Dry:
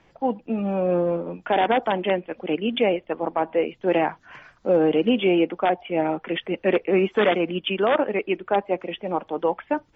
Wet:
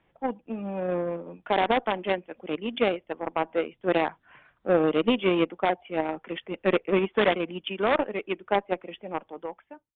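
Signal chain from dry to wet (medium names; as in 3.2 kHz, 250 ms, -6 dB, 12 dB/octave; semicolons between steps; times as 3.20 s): fade out at the end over 0.91 s; Chebyshev shaper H 3 -13 dB, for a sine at -9.5 dBFS; resampled via 8 kHz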